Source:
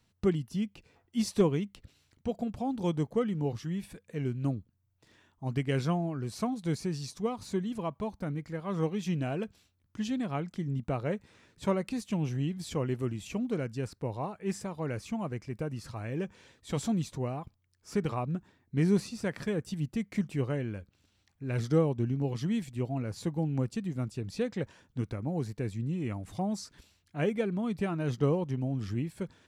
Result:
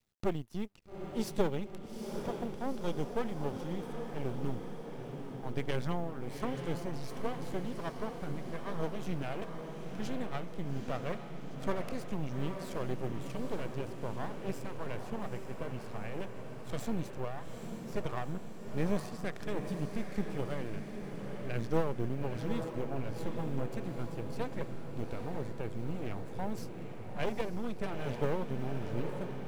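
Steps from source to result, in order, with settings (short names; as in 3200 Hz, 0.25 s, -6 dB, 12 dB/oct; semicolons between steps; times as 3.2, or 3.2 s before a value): G.711 law mismatch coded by A; half-wave rectifier; diffused feedback echo 0.843 s, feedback 64%, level -6 dB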